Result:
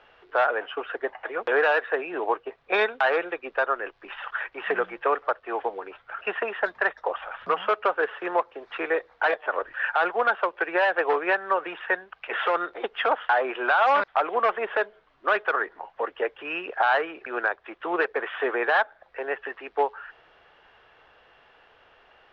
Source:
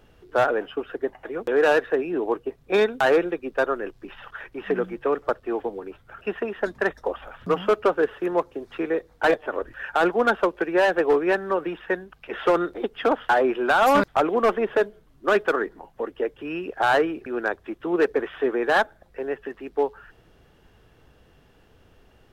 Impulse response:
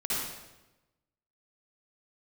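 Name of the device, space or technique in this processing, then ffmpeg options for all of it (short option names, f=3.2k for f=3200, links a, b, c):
DJ mixer with the lows and highs turned down: -filter_complex "[0:a]lowpass=f=6.4k:w=0.5412,lowpass=f=6.4k:w=1.3066,acrossover=split=580 3600:gain=0.0631 1 0.0708[a][b][c];[a][b][c]amix=inputs=3:normalize=0,alimiter=limit=-20.5dB:level=0:latency=1:release=362,volume=8dB"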